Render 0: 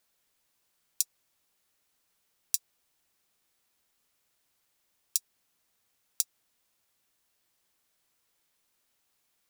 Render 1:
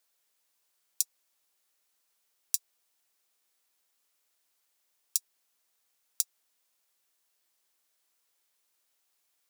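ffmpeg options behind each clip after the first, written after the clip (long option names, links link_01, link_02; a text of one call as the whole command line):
ffmpeg -i in.wav -af "bass=frequency=250:gain=-13,treble=frequency=4000:gain=3,volume=-3dB" out.wav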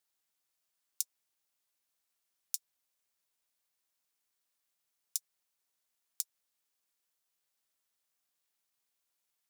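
ffmpeg -i in.wav -af "aeval=exprs='val(0)*sin(2*PI*230*n/s)':channel_layout=same,volume=-4.5dB" out.wav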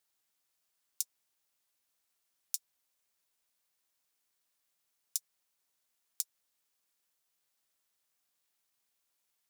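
ffmpeg -i in.wav -af "alimiter=limit=-9.5dB:level=0:latency=1:release=11,volume=2.5dB" out.wav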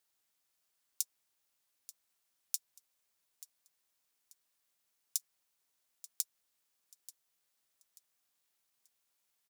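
ffmpeg -i in.wav -af "aecho=1:1:885|1770|2655:0.141|0.0466|0.0154" out.wav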